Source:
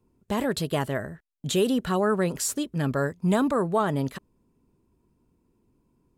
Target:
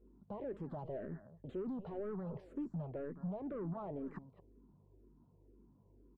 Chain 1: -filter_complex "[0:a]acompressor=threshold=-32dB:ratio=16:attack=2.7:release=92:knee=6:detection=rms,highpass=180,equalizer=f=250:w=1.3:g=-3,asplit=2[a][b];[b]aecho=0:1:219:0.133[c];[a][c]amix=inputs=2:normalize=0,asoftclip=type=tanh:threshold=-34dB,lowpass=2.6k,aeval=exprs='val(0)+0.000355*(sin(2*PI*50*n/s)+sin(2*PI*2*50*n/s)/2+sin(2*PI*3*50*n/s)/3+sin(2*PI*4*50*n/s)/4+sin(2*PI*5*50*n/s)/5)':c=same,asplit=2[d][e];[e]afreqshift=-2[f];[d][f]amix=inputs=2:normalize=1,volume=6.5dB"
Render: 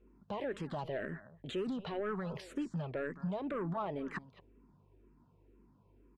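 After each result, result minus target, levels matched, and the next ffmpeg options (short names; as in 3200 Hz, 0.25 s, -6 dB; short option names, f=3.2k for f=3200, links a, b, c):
2000 Hz band +12.5 dB; soft clip: distortion -6 dB
-filter_complex "[0:a]acompressor=threshold=-32dB:ratio=16:attack=2.7:release=92:knee=6:detection=rms,highpass=180,equalizer=f=250:w=1.3:g=-3,asplit=2[a][b];[b]aecho=0:1:219:0.133[c];[a][c]amix=inputs=2:normalize=0,asoftclip=type=tanh:threshold=-34dB,lowpass=730,aeval=exprs='val(0)+0.000355*(sin(2*PI*50*n/s)+sin(2*PI*2*50*n/s)/2+sin(2*PI*3*50*n/s)/3+sin(2*PI*4*50*n/s)/4+sin(2*PI*5*50*n/s)/5)':c=same,asplit=2[d][e];[e]afreqshift=-2[f];[d][f]amix=inputs=2:normalize=1,volume=6.5dB"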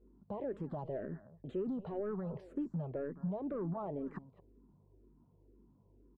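soft clip: distortion -6 dB
-filter_complex "[0:a]acompressor=threshold=-32dB:ratio=16:attack=2.7:release=92:knee=6:detection=rms,highpass=180,equalizer=f=250:w=1.3:g=-3,asplit=2[a][b];[b]aecho=0:1:219:0.133[c];[a][c]amix=inputs=2:normalize=0,asoftclip=type=tanh:threshold=-41dB,lowpass=730,aeval=exprs='val(0)+0.000355*(sin(2*PI*50*n/s)+sin(2*PI*2*50*n/s)/2+sin(2*PI*3*50*n/s)/3+sin(2*PI*4*50*n/s)/4+sin(2*PI*5*50*n/s)/5)':c=same,asplit=2[d][e];[e]afreqshift=-2[f];[d][f]amix=inputs=2:normalize=1,volume=6.5dB"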